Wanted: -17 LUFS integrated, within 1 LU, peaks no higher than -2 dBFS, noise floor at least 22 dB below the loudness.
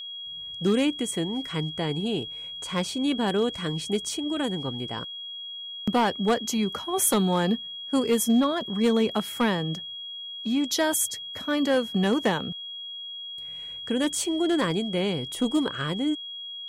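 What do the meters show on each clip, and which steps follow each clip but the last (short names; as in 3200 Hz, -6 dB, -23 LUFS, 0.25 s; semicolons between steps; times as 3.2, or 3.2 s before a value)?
clipped 0.4%; flat tops at -15.5 dBFS; steady tone 3300 Hz; tone level -35 dBFS; loudness -26.5 LUFS; peak -15.5 dBFS; loudness target -17.0 LUFS
-> clip repair -15.5 dBFS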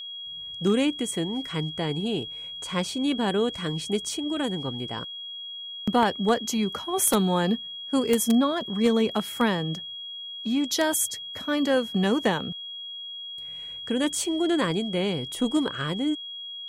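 clipped 0.0%; steady tone 3300 Hz; tone level -35 dBFS
-> notch 3300 Hz, Q 30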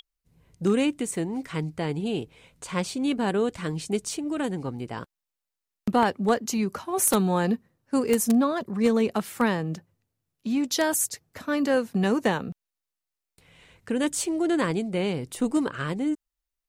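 steady tone none; loudness -26.5 LUFS; peak -6.5 dBFS; loudness target -17.0 LUFS
-> gain +9.5 dB; limiter -2 dBFS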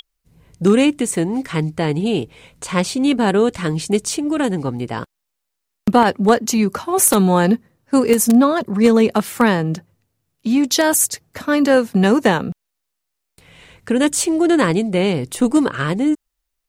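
loudness -17.0 LUFS; peak -2.0 dBFS; noise floor -77 dBFS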